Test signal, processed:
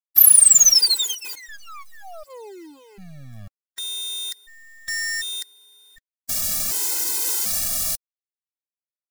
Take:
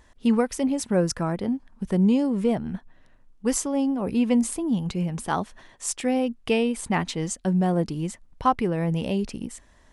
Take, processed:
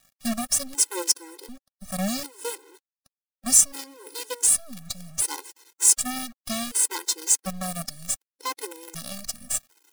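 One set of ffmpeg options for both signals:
-af "adynamicequalizer=threshold=0.0178:dfrequency=210:dqfactor=1.1:tfrequency=210:tqfactor=1.1:attack=5:release=100:ratio=0.375:range=2.5:mode=cutabove:tftype=bell,aeval=exprs='(tanh(7.94*val(0)+0.45)-tanh(0.45))/7.94':c=same,aexciter=amount=6.6:drive=9.6:freq=4.2k,acrusher=bits=4:dc=4:mix=0:aa=0.000001,afftfilt=real='re*gt(sin(2*PI*0.67*pts/sr)*(1-2*mod(floor(b*sr/1024/270),2)),0)':imag='im*gt(sin(2*PI*0.67*pts/sr)*(1-2*mod(floor(b*sr/1024/270),2)),0)':win_size=1024:overlap=0.75,volume=-4dB"

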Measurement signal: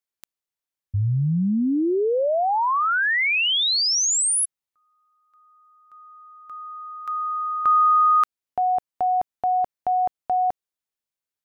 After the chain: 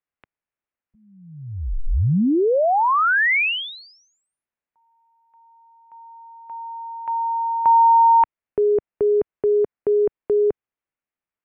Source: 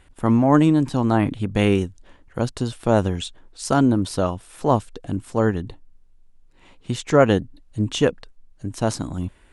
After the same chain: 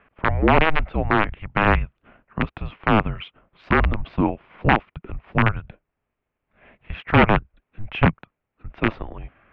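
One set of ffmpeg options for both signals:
-af "aeval=exprs='(mod(2.51*val(0)+1,2)-1)/2.51':c=same,highpass=f=310:t=q:w=0.5412,highpass=f=310:t=q:w=1.307,lowpass=f=2.9k:t=q:w=0.5176,lowpass=f=2.9k:t=q:w=0.7071,lowpass=f=2.9k:t=q:w=1.932,afreqshift=-320,volume=3.5dB"

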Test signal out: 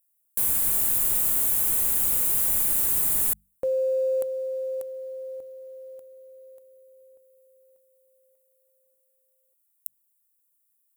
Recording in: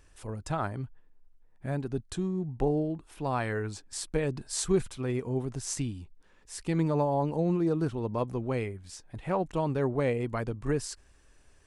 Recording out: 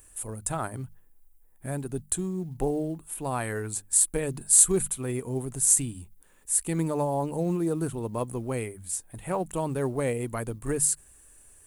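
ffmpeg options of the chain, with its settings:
-af "bandreject=f=50:t=h:w=6,bandreject=f=100:t=h:w=6,bandreject=f=150:t=h:w=6,bandreject=f=200:t=h:w=6,aexciter=amount=10.7:drive=7.2:freq=7.7k,acrusher=bits=9:mode=log:mix=0:aa=0.000001"

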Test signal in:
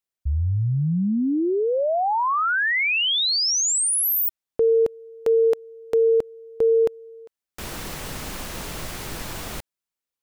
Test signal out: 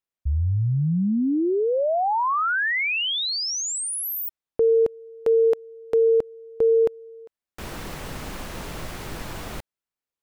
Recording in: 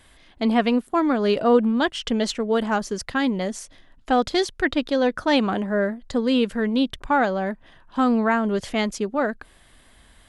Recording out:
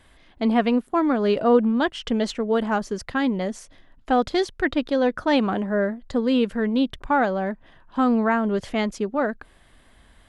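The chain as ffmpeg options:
-af "highshelf=f=3.3k:g=-7.5"

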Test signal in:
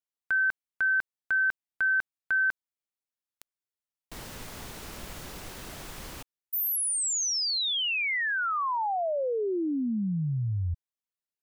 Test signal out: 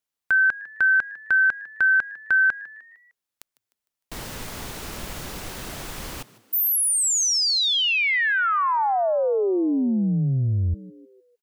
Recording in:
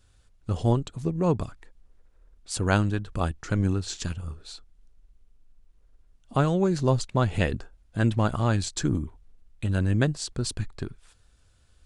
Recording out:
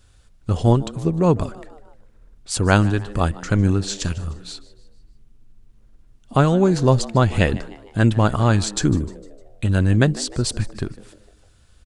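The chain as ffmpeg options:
-filter_complex "[0:a]asplit=5[a][b][c][d][e];[b]adelay=152,afreqshift=100,volume=-19.5dB[f];[c]adelay=304,afreqshift=200,volume=-26.2dB[g];[d]adelay=456,afreqshift=300,volume=-33dB[h];[e]adelay=608,afreqshift=400,volume=-39.7dB[i];[a][f][g][h][i]amix=inputs=5:normalize=0,volume=7dB"

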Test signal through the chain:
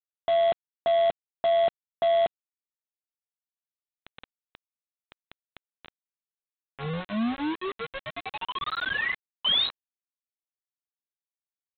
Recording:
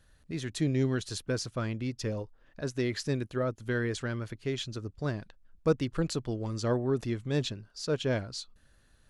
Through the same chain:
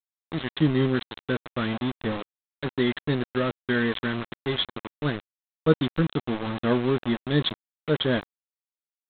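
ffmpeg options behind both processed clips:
-filter_complex "[0:a]adynamicequalizer=threshold=0.00631:dfrequency=230:dqfactor=0.92:tfrequency=230:tqfactor=0.92:attack=5:release=100:ratio=0.375:range=4:mode=boostabove:tftype=bell,crystalizer=i=8.5:c=0,aeval=exprs='val(0)+0.00447*sin(2*PI*1100*n/s)':c=same,asuperstop=centerf=2500:order=20:qfactor=2.7,asplit=2[a][b];[b]adelay=13,volume=-9.5dB[c];[a][c]amix=inputs=2:normalize=0,aresample=8000,aeval=exprs='val(0)*gte(abs(val(0)),0.0422)':c=same,aresample=44100"

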